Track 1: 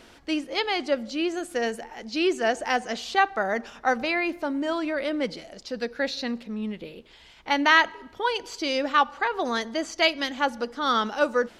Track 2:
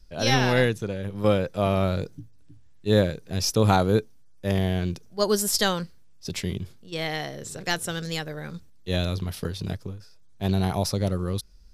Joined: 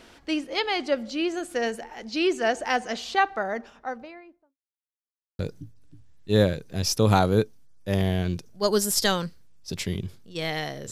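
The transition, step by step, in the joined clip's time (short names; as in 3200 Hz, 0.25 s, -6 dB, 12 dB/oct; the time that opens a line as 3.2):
track 1
2.99–4.57 studio fade out
4.57–5.39 mute
5.39 switch to track 2 from 1.96 s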